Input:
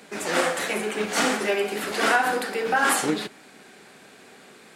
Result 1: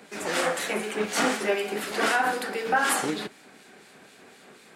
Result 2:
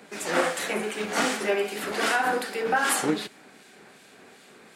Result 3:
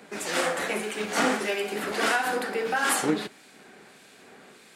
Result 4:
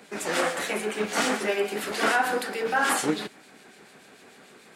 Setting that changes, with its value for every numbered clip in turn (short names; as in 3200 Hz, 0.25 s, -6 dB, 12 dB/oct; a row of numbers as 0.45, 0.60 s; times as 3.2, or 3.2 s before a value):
harmonic tremolo, rate: 4, 2.6, 1.6, 6.8 Hz